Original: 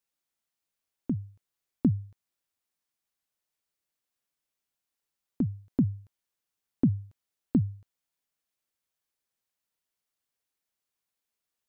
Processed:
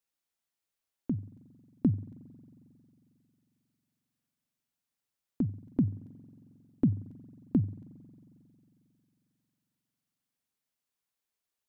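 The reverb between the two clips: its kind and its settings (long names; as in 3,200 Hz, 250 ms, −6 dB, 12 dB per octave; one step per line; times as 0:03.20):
spring reverb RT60 3 s, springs 45 ms, chirp 45 ms, DRR 17.5 dB
level −2 dB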